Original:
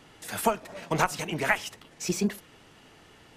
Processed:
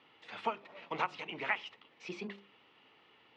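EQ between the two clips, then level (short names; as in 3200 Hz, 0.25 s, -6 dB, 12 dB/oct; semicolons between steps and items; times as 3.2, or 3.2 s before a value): speaker cabinet 140–3300 Hz, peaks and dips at 170 Hz -4 dB, 660 Hz -6 dB, 1600 Hz -9 dB; low shelf 480 Hz -11 dB; notches 50/100/150/200/250/300/350/400 Hz; -4.0 dB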